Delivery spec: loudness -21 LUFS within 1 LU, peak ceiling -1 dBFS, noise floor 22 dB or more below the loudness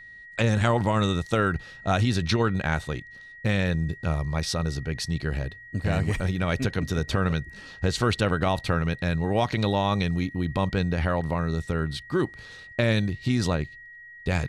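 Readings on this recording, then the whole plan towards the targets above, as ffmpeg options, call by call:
steady tone 1.9 kHz; tone level -43 dBFS; loudness -26.5 LUFS; peak level -7.5 dBFS; loudness target -21.0 LUFS
-> -af "bandreject=f=1900:w=30"
-af "volume=1.88"

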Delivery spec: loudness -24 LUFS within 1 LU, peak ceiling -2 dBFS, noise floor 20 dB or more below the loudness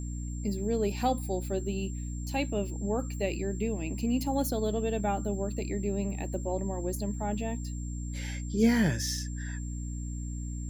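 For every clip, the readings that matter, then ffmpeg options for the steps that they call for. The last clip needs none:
hum 60 Hz; highest harmonic 300 Hz; hum level -33 dBFS; steady tone 7.4 kHz; tone level -48 dBFS; loudness -32.0 LUFS; peak level -12.5 dBFS; loudness target -24.0 LUFS
-> -af "bandreject=f=60:t=h:w=6,bandreject=f=120:t=h:w=6,bandreject=f=180:t=h:w=6,bandreject=f=240:t=h:w=6,bandreject=f=300:t=h:w=6"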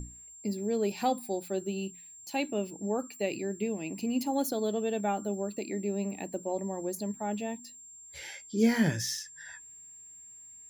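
hum not found; steady tone 7.4 kHz; tone level -48 dBFS
-> -af "bandreject=f=7400:w=30"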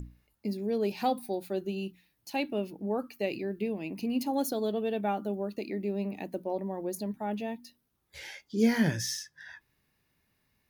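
steady tone not found; loudness -32.5 LUFS; peak level -14.0 dBFS; loudness target -24.0 LUFS
-> -af "volume=2.66"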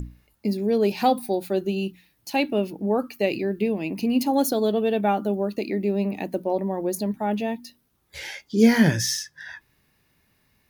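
loudness -24.0 LUFS; peak level -5.5 dBFS; noise floor -67 dBFS

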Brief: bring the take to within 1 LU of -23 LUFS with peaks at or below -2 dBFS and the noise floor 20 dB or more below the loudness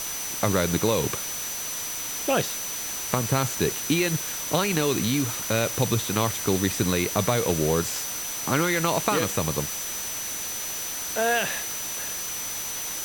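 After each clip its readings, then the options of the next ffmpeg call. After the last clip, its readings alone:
steady tone 6 kHz; tone level -33 dBFS; noise floor -32 dBFS; noise floor target -45 dBFS; loudness -25.0 LUFS; peak level -7.5 dBFS; loudness target -23.0 LUFS
-> -af "bandreject=f=6000:w=30"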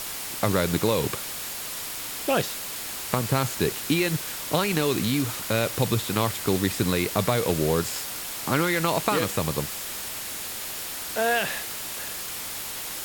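steady tone not found; noise floor -34 dBFS; noise floor target -46 dBFS
-> -af "afftdn=nr=12:nf=-34"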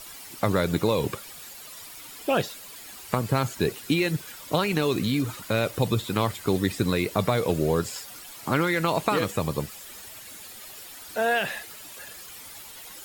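noise floor -43 dBFS; noise floor target -47 dBFS
-> -af "afftdn=nr=6:nf=-43"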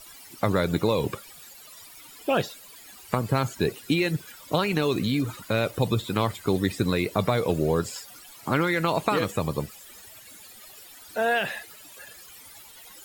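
noise floor -48 dBFS; loudness -26.5 LUFS; peak level -8.0 dBFS; loudness target -23.0 LUFS
-> -af "volume=1.5"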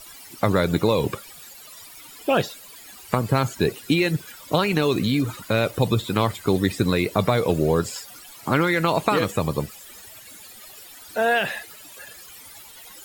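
loudness -22.5 LUFS; peak level -4.5 dBFS; noise floor -44 dBFS

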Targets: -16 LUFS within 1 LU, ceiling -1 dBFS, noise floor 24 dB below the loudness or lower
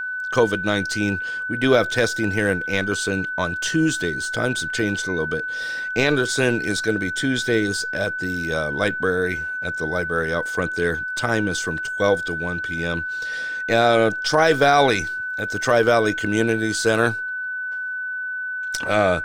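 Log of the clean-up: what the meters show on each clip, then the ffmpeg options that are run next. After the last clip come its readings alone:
steady tone 1.5 kHz; tone level -25 dBFS; loudness -21.5 LUFS; peak level -4.0 dBFS; loudness target -16.0 LUFS
-> -af "bandreject=f=1500:w=30"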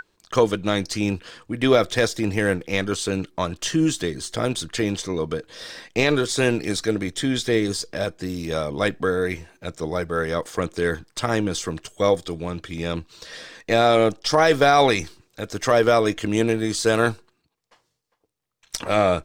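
steady tone not found; loudness -22.5 LUFS; peak level -4.5 dBFS; loudness target -16.0 LUFS
-> -af "volume=2.11,alimiter=limit=0.891:level=0:latency=1"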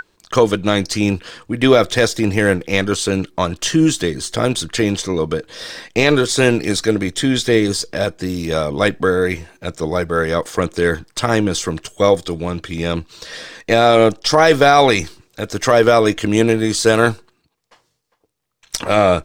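loudness -16.5 LUFS; peak level -1.0 dBFS; noise floor -66 dBFS

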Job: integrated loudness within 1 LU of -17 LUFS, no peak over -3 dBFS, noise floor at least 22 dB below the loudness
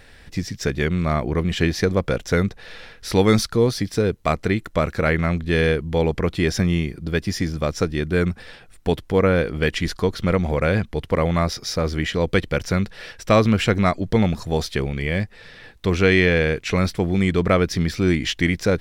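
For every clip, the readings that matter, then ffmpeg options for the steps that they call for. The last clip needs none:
loudness -21.5 LUFS; peak level -4.0 dBFS; loudness target -17.0 LUFS
-> -af "volume=1.68,alimiter=limit=0.708:level=0:latency=1"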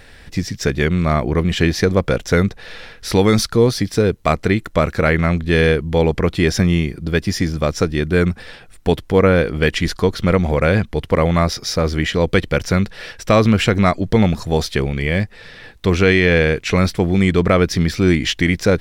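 loudness -17.0 LUFS; peak level -3.0 dBFS; noise floor -42 dBFS

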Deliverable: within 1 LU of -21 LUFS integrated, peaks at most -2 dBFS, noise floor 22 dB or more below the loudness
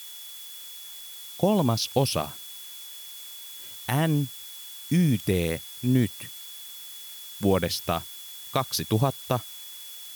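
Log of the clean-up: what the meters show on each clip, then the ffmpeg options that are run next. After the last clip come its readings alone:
steady tone 3.4 kHz; tone level -44 dBFS; noise floor -42 dBFS; noise floor target -50 dBFS; loudness -28.0 LUFS; peak level -10.0 dBFS; loudness target -21.0 LUFS
-> -af "bandreject=f=3400:w=30"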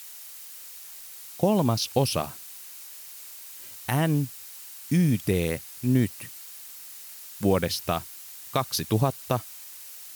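steady tone not found; noise floor -43 dBFS; noise floor target -49 dBFS
-> -af "afftdn=nr=6:nf=-43"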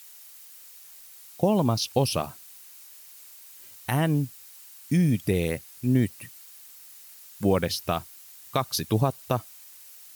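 noise floor -48 dBFS; noise floor target -49 dBFS
-> -af "afftdn=nr=6:nf=-48"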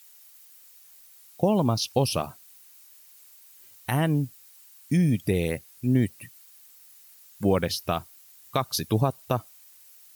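noise floor -53 dBFS; loudness -26.5 LUFS; peak level -10.0 dBFS; loudness target -21.0 LUFS
-> -af "volume=1.88"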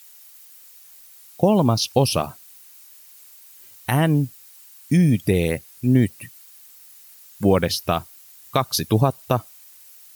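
loudness -21.0 LUFS; peak level -4.5 dBFS; noise floor -48 dBFS

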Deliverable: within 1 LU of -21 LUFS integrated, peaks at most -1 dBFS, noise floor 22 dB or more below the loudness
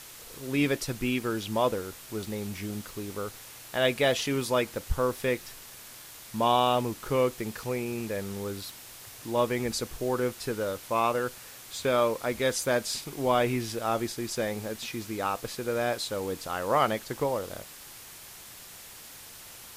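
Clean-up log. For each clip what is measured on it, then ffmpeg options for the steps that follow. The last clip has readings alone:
noise floor -47 dBFS; noise floor target -52 dBFS; loudness -29.5 LUFS; peak level -10.5 dBFS; loudness target -21.0 LUFS
-> -af "afftdn=nr=6:nf=-47"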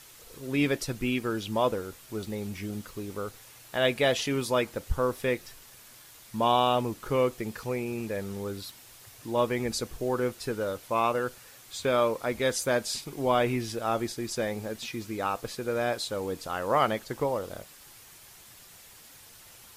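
noise floor -52 dBFS; loudness -29.5 LUFS; peak level -10.5 dBFS; loudness target -21.0 LUFS
-> -af "volume=2.66"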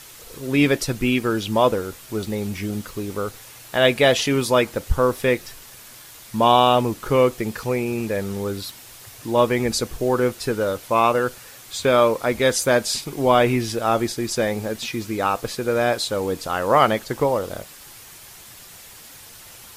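loudness -21.0 LUFS; peak level -2.0 dBFS; noise floor -43 dBFS

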